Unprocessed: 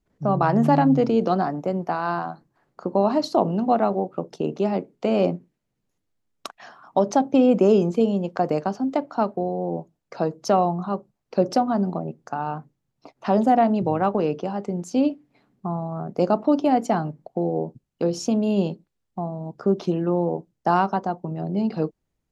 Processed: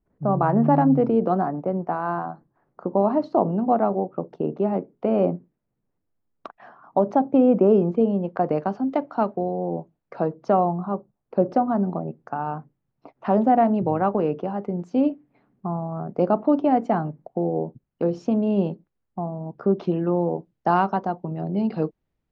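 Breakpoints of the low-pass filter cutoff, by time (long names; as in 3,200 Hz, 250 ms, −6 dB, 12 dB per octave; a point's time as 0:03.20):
0:07.98 1,400 Hz
0:08.89 2,800 Hz
0:09.69 2,800 Hz
0:10.84 1,300 Hz
0:11.42 1,300 Hz
0:11.88 2,000 Hz
0:19.31 2,000 Hz
0:20.32 3,400 Hz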